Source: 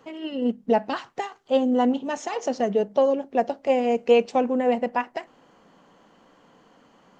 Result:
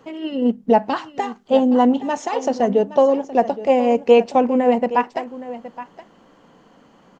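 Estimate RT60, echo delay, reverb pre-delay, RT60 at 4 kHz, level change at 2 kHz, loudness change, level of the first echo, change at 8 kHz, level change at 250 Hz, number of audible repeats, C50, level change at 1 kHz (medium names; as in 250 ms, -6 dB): no reverb, 819 ms, no reverb, no reverb, +3.0 dB, +5.5 dB, -15.0 dB, no reading, +6.0 dB, 1, no reverb, +6.5 dB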